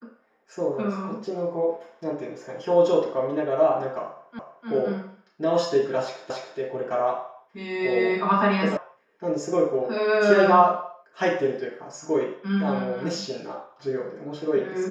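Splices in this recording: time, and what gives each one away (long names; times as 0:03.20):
0:04.39: the same again, the last 0.3 s
0:06.30: the same again, the last 0.28 s
0:08.77: cut off before it has died away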